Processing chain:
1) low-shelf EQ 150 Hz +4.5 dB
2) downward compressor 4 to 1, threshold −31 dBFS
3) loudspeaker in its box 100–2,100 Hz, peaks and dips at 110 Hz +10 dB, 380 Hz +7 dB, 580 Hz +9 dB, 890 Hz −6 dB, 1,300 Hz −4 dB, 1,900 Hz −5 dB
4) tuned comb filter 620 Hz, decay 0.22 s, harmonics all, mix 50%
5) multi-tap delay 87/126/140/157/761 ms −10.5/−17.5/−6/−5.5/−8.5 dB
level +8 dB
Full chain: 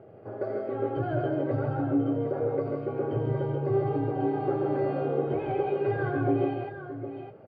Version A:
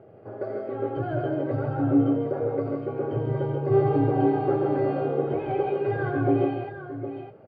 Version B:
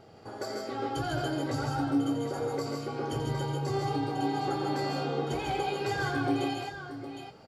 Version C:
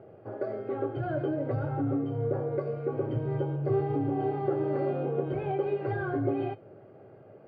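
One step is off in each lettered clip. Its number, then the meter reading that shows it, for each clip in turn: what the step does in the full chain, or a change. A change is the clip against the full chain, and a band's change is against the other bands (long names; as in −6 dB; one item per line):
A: 2, average gain reduction 1.5 dB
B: 3, change in integrated loudness −3.0 LU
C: 5, echo-to-direct ratio −1.0 dB to none audible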